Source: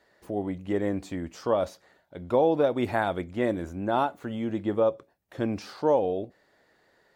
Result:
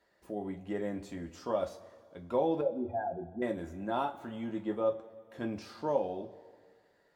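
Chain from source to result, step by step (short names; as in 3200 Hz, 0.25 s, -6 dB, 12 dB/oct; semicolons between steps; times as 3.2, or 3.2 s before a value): 2.61–3.42 spectral contrast raised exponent 3.2; two-slope reverb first 0.21 s, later 1.9 s, from -20 dB, DRR 2 dB; gain -9 dB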